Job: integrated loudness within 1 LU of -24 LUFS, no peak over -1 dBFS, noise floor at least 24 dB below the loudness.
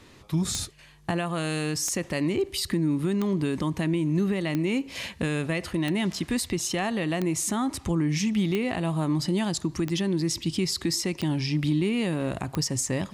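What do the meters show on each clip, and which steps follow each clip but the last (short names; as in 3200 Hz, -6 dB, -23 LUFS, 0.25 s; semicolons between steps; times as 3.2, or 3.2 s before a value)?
clicks 10; loudness -27.0 LUFS; peak -12.5 dBFS; loudness target -24.0 LUFS
-> de-click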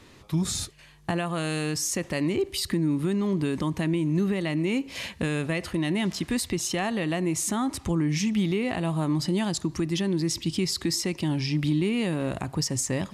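clicks 0; loudness -27.0 LUFS; peak -15.5 dBFS; loudness target -24.0 LUFS
-> gain +3 dB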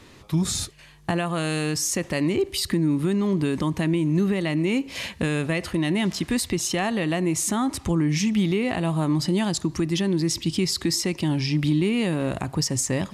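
loudness -24.0 LUFS; peak -12.5 dBFS; noise floor -48 dBFS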